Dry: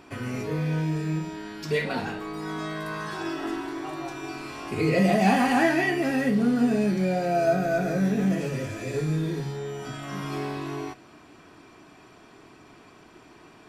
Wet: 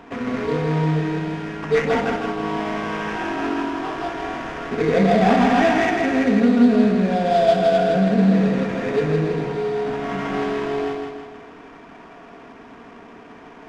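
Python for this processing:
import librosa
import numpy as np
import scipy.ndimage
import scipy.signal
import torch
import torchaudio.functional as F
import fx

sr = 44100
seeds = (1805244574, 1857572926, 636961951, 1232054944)

p1 = scipy.signal.sosfilt(scipy.signal.butter(2, 130.0, 'highpass', fs=sr, output='sos'), x)
p2 = fx.low_shelf(p1, sr, hz=420.0, db=-6.0)
p3 = p2 + 0.6 * np.pad(p2, (int(4.3 * sr / 1000.0), 0))[:len(p2)]
p4 = fx.rider(p3, sr, range_db=4, speed_s=0.5)
p5 = p3 + (p4 * 10.0 ** (1.0 / 20.0))
p6 = fx.sample_hold(p5, sr, seeds[0], rate_hz=4200.0, jitter_pct=20)
p7 = fx.spacing_loss(p6, sr, db_at_10k=28)
p8 = p7 + fx.echo_feedback(p7, sr, ms=161, feedback_pct=48, wet_db=-4, dry=0)
y = p8 * 10.0 ** (2.0 / 20.0)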